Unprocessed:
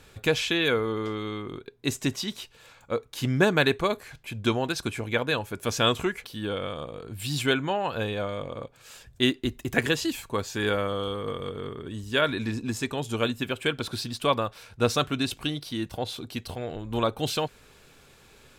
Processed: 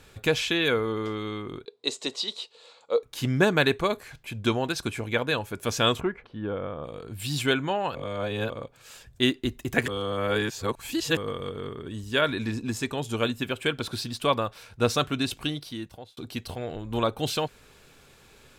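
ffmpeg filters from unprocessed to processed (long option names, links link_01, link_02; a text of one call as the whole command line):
ffmpeg -i in.wav -filter_complex "[0:a]asettb=1/sr,asplit=3[link_01][link_02][link_03];[link_01]atrim=end=1.654[link_04];[link_02]atrim=start=1.65:end=3.03,asetpts=PTS-STARTPTS,afade=type=in:duration=0.004:curve=qsin,afade=type=out:start_time=1.376:duration=0.004:curve=qsin,highpass=460,equalizer=frequency=470:width_type=q:width=4:gain=9,equalizer=frequency=1600:width_type=q:width=4:gain=-10,equalizer=frequency=2300:width_type=q:width=4:gain=-5,equalizer=frequency=4100:width_type=q:width=4:gain=9,equalizer=frequency=6000:width_type=q:width=4:gain=-5,lowpass=frequency=8200:width=0.5412,lowpass=frequency=8200:width=1.3066[link_05];[link_03]atrim=start=3.026[link_06];[link_04][link_05]acrossfade=duration=0.004:curve1=hsin:curve2=qsin[link_07];[link_07][link_06]acrossfade=duration=0.004:curve1=qsin:curve2=hsin,asplit=3[link_08][link_09][link_10];[link_08]afade=type=out:start_time=5.99:duration=0.02[link_11];[link_09]lowpass=1400,afade=type=in:start_time=5.99:duration=0.02,afade=type=out:start_time=6.83:duration=0.02[link_12];[link_10]afade=type=in:start_time=6.83:duration=0.02[link_13];[link_11][link_12][link_13]amix=inputs=3:normalize=0,asplit=6[link_14][link_15][link_16][link_17][link_18][link_19];[link_14]atrim=end=7.952[link_20];[link_15]atrim=start=7.948:end=8.502,asetpts=PTS-STARTPTS,areverse[link_21];[link_16]atrim=start=8.498:end=9.882[link_22];[link_17]atrim=start=9.878:end=11.172,asetpts=PTS-STARTPTS,areverse[link_23];[link_18]atrim=start=11.168:end=16.17,asetpts=PTS-STARTPTS,afade=type=out:start_time=4.332:duration=0.67[link_24];[link_19]atrim=start=16.17,asetpts=PTS-STARTPTS,afade=type=in:duration=0.004:curve=hsin[link_25];[link_20][link_21]acrossfade=duration=0.004:curve1=hsin:curve2=hsin[link_26];[link_26][link_22]acrossfade=duration=0.004:curve1=hsin:curve2=hsin[link_27];[link_27][link_23]acrossfade=duration=0.004:curve1=hsin:curve2=hsin[link_28];[link_24][link_25]concat=n=2:v=0:a=1[link_29];[link_28][link_29]acrossfade=duration=0.004:curve1=hsin:curve2=hsin" out.wav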